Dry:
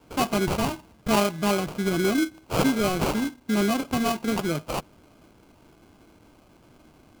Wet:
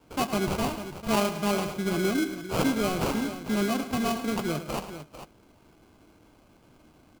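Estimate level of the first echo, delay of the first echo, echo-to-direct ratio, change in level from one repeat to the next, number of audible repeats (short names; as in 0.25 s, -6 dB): -12.0 dB, 0.107 s, -8.0 dB, no steady repeat, 4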